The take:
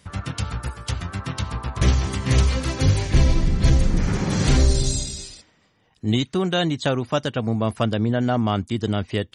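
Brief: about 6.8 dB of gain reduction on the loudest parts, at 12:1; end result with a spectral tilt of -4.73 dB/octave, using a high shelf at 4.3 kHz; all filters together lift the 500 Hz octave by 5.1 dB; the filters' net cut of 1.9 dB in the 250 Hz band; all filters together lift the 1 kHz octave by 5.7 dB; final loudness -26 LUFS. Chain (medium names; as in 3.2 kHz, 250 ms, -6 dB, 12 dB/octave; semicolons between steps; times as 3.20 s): peaking EQ 250 Hz -4.5 dB; peaking EQ 500 Hz +6 dB; peaking EQ 1 kHz +5.5 dB; treble shelf 4.3 kHz +5.5 dB; compression 12:1, threshold -18 dBFS; trim -1 dB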